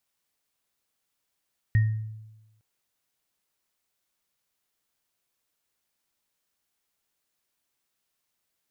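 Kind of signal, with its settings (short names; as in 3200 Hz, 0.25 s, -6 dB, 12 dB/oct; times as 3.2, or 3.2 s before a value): sine partials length 0.86 s, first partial 109 Hz, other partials 1860 Hz, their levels -14 dB, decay 1.05 s, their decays 0.40 s, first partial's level -15.5 dB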